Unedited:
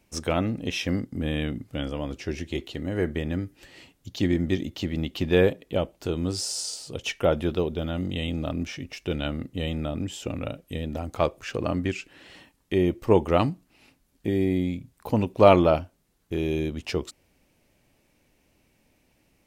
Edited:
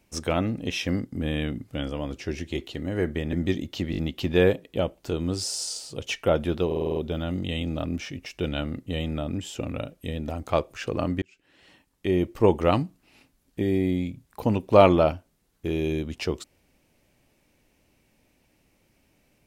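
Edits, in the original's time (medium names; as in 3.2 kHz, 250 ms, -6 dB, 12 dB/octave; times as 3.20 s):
3.33–4.36 s: delete
4.94 s: stutter 0.02 s, 4 plays
7.63 s: stutter 0.05 s, 7 plays
11.89–12.92 s: fade in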